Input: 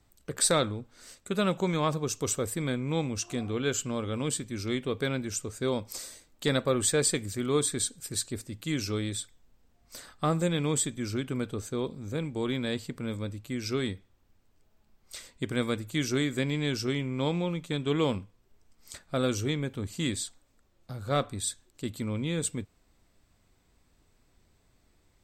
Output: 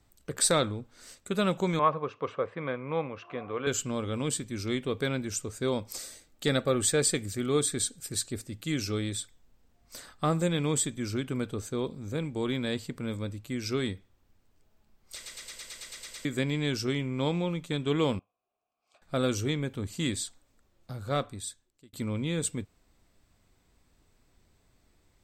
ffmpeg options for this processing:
ffmpeg -i in.wav -filter_complex "[0:a]asettb=1/sr,asplit=3[link_01][link_02][link_03];[link_01]atrim=end=1.794[link_04];[link_02]atrim=start=1.79:end=3.67,asetpts=PTS-STARTPTS,afade=type=in:duration=0.004:curve=qsin,afade=type=out:start_time=1.876:duration=0.004:curve=qsin,highpass=200,equalizer=frequency=230:width_type=q:width=4:gain=-9,equalizer=frequency=340:width_type=q:width=4:gain=-7,equalizer=frequency=540:width_type=q:width=4:gain=5,equalizer=frequency=1100:width_type=q:width=4:gain=8,lowpass=frequency=2600:width=0.5412,lowpass=frequency=2600:width=1.3066[link_05];[link_03]atrim=start=3.666[link_06];[link_04][link_05]acrossfade=duration=0.004:curve1=hsin:curve2=qsin[link_07];[link_07][link_06]acrossfade=duration=0.004:curve1=qsin:curve2=hsin,asettb=1/sr,asplit=3[link_08][link_09][link_10];[link_08]atrim=end=5.964[link_11];[link_09]atrim=start=5.96:end=9.04,asetpts=PTS-STARTPTS,afade=type=in:duration=0.004:curve=qsin,afade=type=out:start_time=3.076:duration=0.004:curve=qsin,asuperstop=centerf=1000:order=4:qfactor=7.4[link_12];[link_10]atrim=start=9.036[link_13];[link_11][link_12]acrossfade=duration=0.004:curve1=hsin:curve2=qsin[link_14];[link_14][link_13]acrossfade=duration=0.004:curve1=qsin:curve2=hsin,asettb=1/sr,asplit=3[link_15][link_16][link_17];[link_15]atrim=end=18.194[link_18];[link_16]atrim=start=18.19:end=19.02,asetpts=PTS-STARTPTS,afade=type=in:duration=0.004:curve=qsin,afade=type=out:start_time=0.826:duration=0.004:curve=qsin,asplit=3[link_19][link_20][link_21];[link_19]bandpass=frequency=730:width_type=q:width=8,volume=0dB[link_22];[link_20]bandpass=frequency=1090:width_type=q:width=8,volume=-6dB[link_23];[link_21]bandpass=frequency=2440:width_type=q:width=8,volume=-9dB[link_24];[link_22][link_23][link_24]amix=inputs=3:normalize=0[link_25];[link_17]atrim=start=19.016[link_26];[link_18][link_25]acrossfade=duration=0.004:curve1=hsin:curve2=qsin[link_27];[link_27][link_26]acrossfade=duration=0.004:curve1=qsin:curve2=hsin,asplit=12[link_28][link_29][link_30][link_31][link_32][link_33][link_34][link_35][link_36][link_37][link_38][link_39];[link_28]atrim=end=15.262[link_40];[link_29]atrim=start=15.148:end=15.262[link_41];[link_30]atrim=start=15.148:end=15.262[link_42];[link_31]atrim=start=15.148:end=15.262[link_43];[link_32]atrim=start=15.148:end=15.262[link_44];[link_33]atrim=start=15.148:end=15.262[link_45];[link_34]atrim=start=15.148:end=15.262[link_46];[link_35]atrim=start=15.148:end=15.262[link_47];[link_36]atrim=start=15.148:end=15.262[link_48];[link_37]atrim=start=15.148:end=15.262[link_49];[link_38]atrim=start=16.248:end=21.93,asetpts=PTS-STARTPTS,afade=type=out:start_time=4.712:duration=0.97[link_50];[link_39]atrim=start=21.93,asetpts=PTS-STARTPTS,afade=type=in:duration=0.004:curve=hsin[link_51];[link_40][link_41]acrossfade=duration=0.004:curve1=hsin:curve2=hsin[link_52];[link_52][link_42]acrossfade=duration=0.004:curve1=hsin:curve2=hsin[link_53];[link_53][link_43]acrossfade=duration=0.004:curve1=hsin:curve2=hsin[link_54];[link_54][link_44]acrossfade=duration=0.004:curve1=hsin:curve2=hsin[link_55];[link_55][link_45]acrossfade=duration=0.004:curve1=hsin:curve2=hsin[link_56];[link_56][link_46]acrossfade=duration=0.004:curve1=hsin:curve2=hsin[link_57];[link_57][link_47]acrossfade=duration=0.004:curve1=hsin:curve2=hsin[link_58];[link_58][link_48]acrossfade=duration=0.004:curve1=hsin:curve2=hsin[link_59];[link_59][link_49]acrossfade=duration=0.004:curve1=hsin:curve2=hsin[link_60];[link_50][link_51]concat=n=2:v=0:a=1[link_61];[link_60][link_61]acrossfade=duration=0.004:curve1=hsin:curve2=hsin" out.wav

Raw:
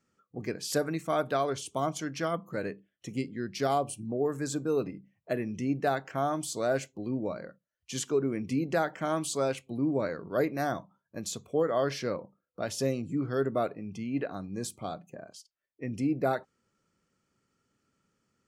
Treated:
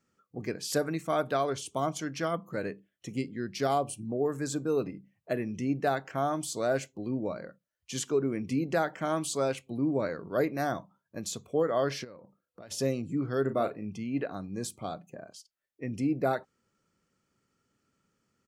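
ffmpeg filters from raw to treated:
ffmpeg -i in.wav -filter_complex "[0:a]asplit=3[link_01][link_02][link_03];[link_01]afade=type=out:start_time=12.03:duration=0.02[link_04];[link_02]acompressor=threshold=-47dB:ratio=4:attack=3.2:release=140:knee=1:detection=peak,afade=type=in:start_time=12.03:duration=0.02,afade=type=out:start_time=12.7:duration=0.02[link_05];[link_03]afade=type=in:start_time=12.7:duration=0.02[link_06];[link_04][link_05][link_06]amix=inputs=3:normalize=0,asplit=3[link_07][link_08][link_09];[link_07]afade=type=out:start_time=13.44:duration=0.02[link_10];[link_08]asplit=2[link_11][link_12];[link_12]adelay=38,volume=-9dB[link_13];[link_11][link_13]amix=inputs=2:normalize=0,afade=type=in:start_time=13.44:duration=0.02,afade=type=out:start_time=13.9:duration=0.02[link_14];[link_09]afade=type=in:start_time=13.9:duration=0.02[link_15];[link_10][link_14][link_15]amix=inputs=3:normalize=0" out.wav

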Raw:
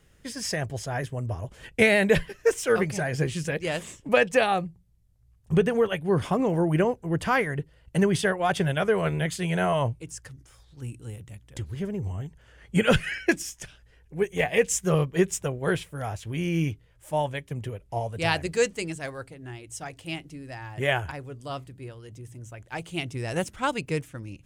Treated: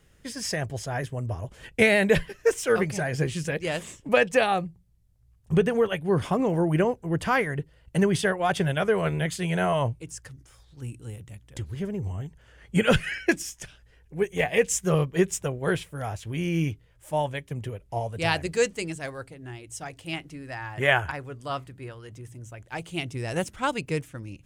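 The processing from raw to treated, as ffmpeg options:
ffmpeg -i in.wav -filter_complex "[0:a]asettb=1/sr,asplit=3[link_01][link_02][link_03];[link_01]atrim=end=20.134[link_04];[link_02]atrim=start=20.13:end=22.29,asetpts=PTS-STARTPTS,afade=type=in:duration=0.004:curve=qsin,afade=type=out:start_time=2.156:duration=0.004:curve=qsin,equalizer=frequency=1400:width=0.74:gain=6.5[link_05];[link_03]atrim=start=22.286[link_06];[link_04][link_05]acrossfade=duration=0.004:curve1=hsin:curve2=qsin[link_07];[link_07][link_06]acrossfade=duration=0.004:curve1=qsin:curve2=hsin" out.wav

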